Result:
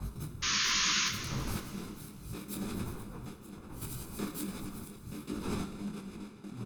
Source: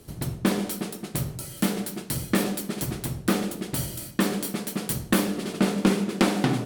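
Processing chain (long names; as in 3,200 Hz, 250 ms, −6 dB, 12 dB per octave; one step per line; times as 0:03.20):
reversed piece by piece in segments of 155 ms
wind on the microphone 550 Hz −34 dBFS
low-shelf EQ 85 Hz +6.5 dB
notch filter 2,700 Hz, Q 29
comb filter 0.8 ms, depth 61%
compressor whose output falls as the input rises −25 dBFS, ratio −0.5
amplitude tremolo 0.72 Hz, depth 75%
sound drawn into the spectrogram noise, 0:00.42–0:01.09, 990–6,800 Hz −19 dBFS
on a send: feedback echo with a high-pass in the loop 241 ms, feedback 50%, level −16 dB
on the sum: dense smooth reverb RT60 2.1 s, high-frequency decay 0.65×, DRR 6.5 dB
micro pitch shift up and down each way 45 cents
level −8 dB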